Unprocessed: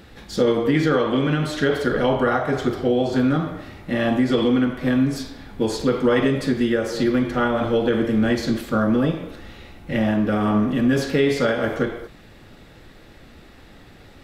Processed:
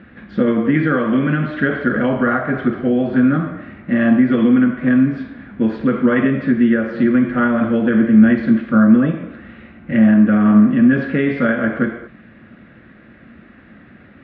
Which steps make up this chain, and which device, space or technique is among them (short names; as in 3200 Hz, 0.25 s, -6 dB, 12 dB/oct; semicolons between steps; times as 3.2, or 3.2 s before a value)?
bass cabinet (speaker cabinet 86–2400 Hz, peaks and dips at 100 Hz -4 dB, 220 Hz +9 dB, 440 Hz -7 dB, 850 Hz -10 dB, 1600 Hz +5 dB); gain +3 dB